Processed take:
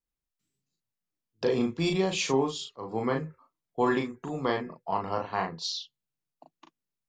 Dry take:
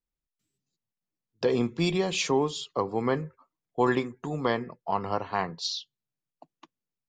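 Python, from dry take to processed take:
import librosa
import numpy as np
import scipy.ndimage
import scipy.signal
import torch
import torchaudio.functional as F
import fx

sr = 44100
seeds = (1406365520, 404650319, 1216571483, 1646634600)

y = fx.auto_swell(x, sr, attack_ms=150.0, at=(2.43, 2.93))
y = fx.doubler(y, sr, ms=37.0, db=-4)
y = y * librosa.db_to_amplitude(-2.5)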